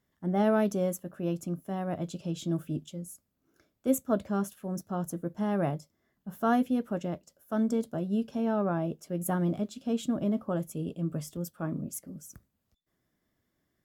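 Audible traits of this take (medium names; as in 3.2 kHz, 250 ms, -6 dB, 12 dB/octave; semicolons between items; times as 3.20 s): noise floor -79 dBFS; spectral tilt -6.5 dB/octave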